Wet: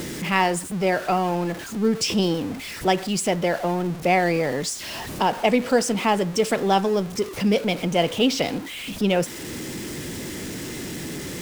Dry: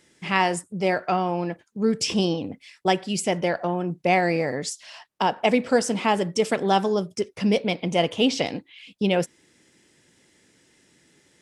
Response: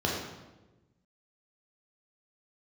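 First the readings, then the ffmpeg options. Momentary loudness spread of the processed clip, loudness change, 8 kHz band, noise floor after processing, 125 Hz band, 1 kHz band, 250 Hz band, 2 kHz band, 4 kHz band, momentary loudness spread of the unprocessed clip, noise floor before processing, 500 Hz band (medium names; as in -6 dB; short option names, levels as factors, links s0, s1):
11 LU, +0.5 dB, +4.0 dB, -35 dBFS, +2.5 dB, +1.0 dB, +1.5 dB, +1.5 dB, +2.0 dB, 9 LU, -63 dBFS, +1.5 dB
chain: -filter_complex "[0:a]aeval=exprs='val(0)+0.5*0.0299*sgn(val(0))':c=same,acrossover=split=460[s0][s1];[s0]acompressor=mode=upward:threshold=0.0562:ratio=2.5[s2];[s2][s1]amix=inputs=2:normalize=0"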